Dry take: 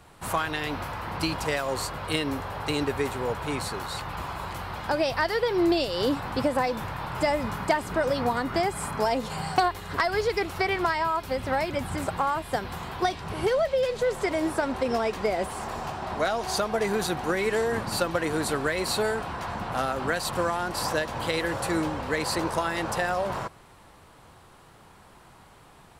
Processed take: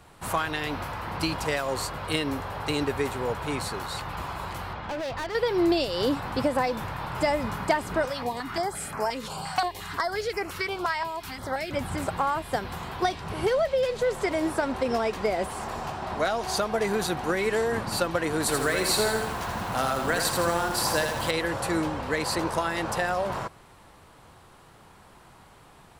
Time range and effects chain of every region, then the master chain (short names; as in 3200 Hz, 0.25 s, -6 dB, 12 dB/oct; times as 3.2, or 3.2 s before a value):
4.73–5.35 air absorption 200 m + hard clip -29.5 dBFS
8.05–11.71 low shelf 390 Hz -8 dB + upward compressor, threshold -28 dBFS + stepped notch 5.7 Hz 390–3600 Hz
18.4–21.31 high shelf 4700 Hz +6.5 dB + lo-fi delay 82 ms, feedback 55%, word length 7-bit, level -4.5 dB
whole clip: dry